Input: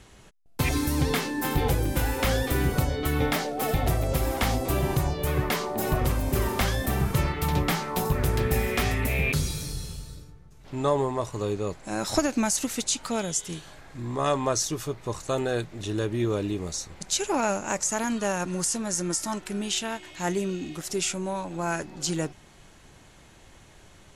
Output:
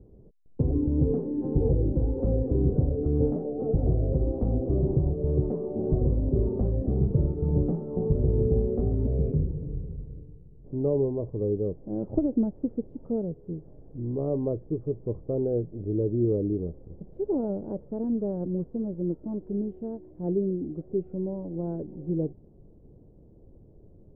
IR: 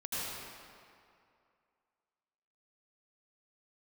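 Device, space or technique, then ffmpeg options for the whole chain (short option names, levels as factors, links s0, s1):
under water: -af "lowpass=f=470:w=0.5412,lowpass=f=470:w=1.3066,equalizer=f=470:t=o:w=0.4:g=4,volume=1.19"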